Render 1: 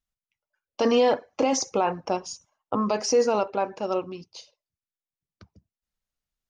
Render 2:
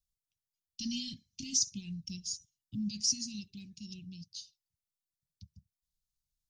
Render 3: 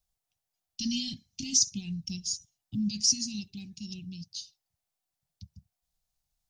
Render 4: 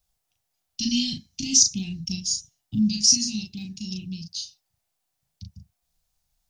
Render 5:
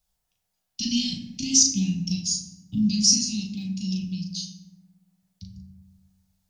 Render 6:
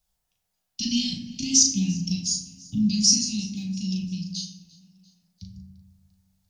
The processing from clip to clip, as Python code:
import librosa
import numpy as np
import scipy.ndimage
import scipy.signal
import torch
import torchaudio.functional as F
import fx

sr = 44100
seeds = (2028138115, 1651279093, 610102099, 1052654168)

y1 = scipy.signal.sosfilt(scipy.signal.cheby2(4, 60, [450.0, 1500.0], 'bandstop', fs=sr, output='sos'), x)
y2 = fx.peak_eq(y1, sr, hz=730.0, db=11.5, octaves=0.44)
y2 = y2 * librosa.db_to_amplitude(5.5)
y3 = fx.doubler(y2, sr, ms=37.0, db=-4.5)
y3 = y3 * librosa.db_to_amplitude(6.0)
y4 = fx.rev_fdn(y3, sr, rt60_s=1.6, lf_ratio=1.0, hf_ratio=0.35, size_ms=32.0, drr_db=2.5)
y4 = y4 * librosa.db_to_amplitude(-1.5)
y5 = fx.echo_feedback(y4, sr, ms=345, feedback_pct=52, wet_db=-23)